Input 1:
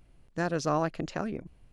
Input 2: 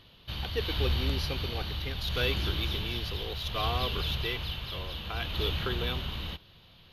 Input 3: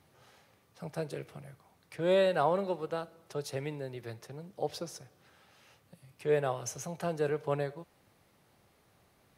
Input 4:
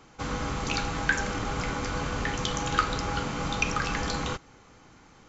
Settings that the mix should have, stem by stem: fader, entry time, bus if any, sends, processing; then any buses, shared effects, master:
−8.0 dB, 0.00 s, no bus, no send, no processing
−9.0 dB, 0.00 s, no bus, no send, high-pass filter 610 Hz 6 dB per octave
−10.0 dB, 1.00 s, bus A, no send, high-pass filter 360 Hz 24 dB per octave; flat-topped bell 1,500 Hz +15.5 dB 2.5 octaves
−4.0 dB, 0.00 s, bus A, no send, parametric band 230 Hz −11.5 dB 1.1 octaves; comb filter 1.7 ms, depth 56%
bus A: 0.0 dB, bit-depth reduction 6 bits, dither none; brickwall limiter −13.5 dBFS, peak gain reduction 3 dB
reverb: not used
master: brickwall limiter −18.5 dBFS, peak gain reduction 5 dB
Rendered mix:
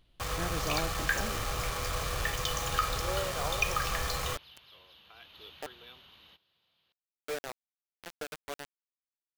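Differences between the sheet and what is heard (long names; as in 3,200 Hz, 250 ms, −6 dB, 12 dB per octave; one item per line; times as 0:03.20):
stem 2 −9.0 dB → −16.5 dB
stem 3: missing flat-topped bell 1,500 Hz +15.5 dB 2.5 octaves
master: missing brickwall limiter −18.5 dBFS, peak gain reduction 5 dB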